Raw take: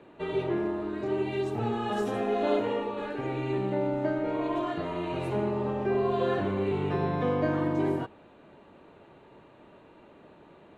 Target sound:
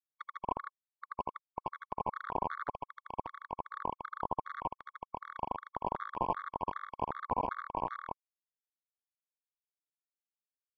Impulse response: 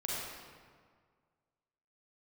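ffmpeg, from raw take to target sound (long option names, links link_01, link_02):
-af "acompressor=threshold=-37dB:ratio=4,aresample=8000,acrusher=bits=4:mix=0:aa=0.000001,aresample=44100,aecho=1:1:81.63|154.5:0.501|0.501,asoftclip=type=hard:threshold=-36.5dB,lowpass=frequency=1000:width_type=q:width=4.9,afftfilt=real='re*gt(sin(2*PI*2.6*pts/sr)*(1-2*mod(floor(b*sr/1024/1100),2)),0)':imag='im*gt(sin(2*PI*2.6*pts/sr)*(1-2*mod(floor(b*sr/1024/1100),2)),0)':win_size=1024:overlap=0.75,volume=14.5dB"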